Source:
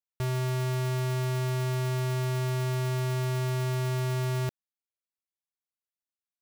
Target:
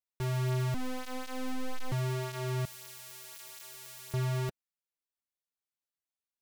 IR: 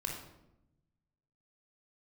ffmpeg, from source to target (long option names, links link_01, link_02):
-filter_complex "[0:a]flanger=delay=3.9:depth=8.6:regen=-15:speed=0.43:shape=triangular,asettb=1/sr,asplit=3[link_01][link_02][link_03];[link_01]atrim=end=0.744[link_04];[link_02]atrim=start=0.74:end=1.92,asetpts=PTS-STARTPTS,afade=type=in:duration=0.004:curve=qsin,afade=type=out:start_time=1.176:duration=0.004:curve=qsin,aeval=exprs='abs(val(0))':channel_layout=same[link_05];[link_03]atrim=start=1.916[link_06];[link_04][link_05]acrossfade=duration=0.004:curve1=hsin:curve2=qsin[link_07];[link_07][link_06]acrossfade=duration=0.004:curve1=qsin:curve2=hsin,asettb=1/sr,asplit=3[link_08][link_09][link_10];[link_08]atrim=end=2.654[link_11];[link_09]atrim=start=2.65:end=4.14,asetpts=PTS-STARTPTS,afade=type=in:duration=0.004:curve=qsin,afade=type=out:start_time=1.486:duration=0.004:curve=qsin,aderivative[link_12];[link_10]atrim=start=4.136[link_13];[link_11][link_12]acrossfade=duration=0.004:curve1=hsin:curve2=qsin[link_14];[link_14][link_13]acrossfade=duration=0.004:curve1=qsin:curve2=hsin"